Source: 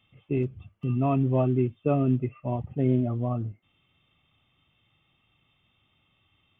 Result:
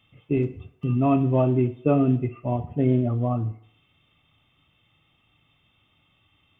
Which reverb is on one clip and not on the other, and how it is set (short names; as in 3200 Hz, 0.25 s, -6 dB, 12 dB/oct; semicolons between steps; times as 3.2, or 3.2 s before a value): FDN reverb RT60 0.67 s, low-frequency decay 0.7×, high-frequency decay 0.9×, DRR 10 dB; gain +3.5 dB